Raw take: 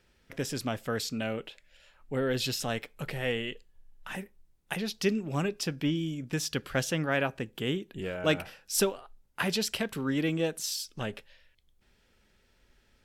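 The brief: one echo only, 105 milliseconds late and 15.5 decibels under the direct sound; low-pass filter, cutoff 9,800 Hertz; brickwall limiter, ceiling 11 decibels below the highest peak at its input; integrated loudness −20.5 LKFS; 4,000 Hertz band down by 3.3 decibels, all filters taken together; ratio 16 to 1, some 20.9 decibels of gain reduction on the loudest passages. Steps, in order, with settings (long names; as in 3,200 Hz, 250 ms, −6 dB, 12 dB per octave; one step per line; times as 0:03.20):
low-pass filter 9,800 Hz
parametric band 4,000 Hz −4.5 dB
downward compressor 16 to 1, threshold −42 dBFS
brickwall limiter −37 dBFS
single-tap delay 105 ms −15.5 dB
level +27.5 dB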